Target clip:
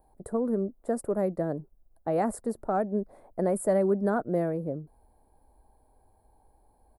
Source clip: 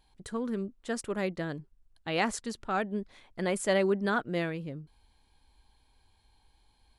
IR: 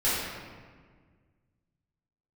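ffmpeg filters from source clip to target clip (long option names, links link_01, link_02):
-filter_complex "[0:a]firequalizer=gain_entry='entry(110,0);entry(630,13);entry(970,0);entry(3000,-29);entry(5000,-16);entry(9800,-22)':delay=0.05:min_phase=1,acrossover=split=290|1100[link_01][link_02][link_03];[link_02]acompressor=threshold=-31dB:ratio=6[link_04];[link_01][link_04][link_03]amix=inputs=3:normalize=0,aexciter=amount=10.6:drive=9:freq=8900,volume=2dB"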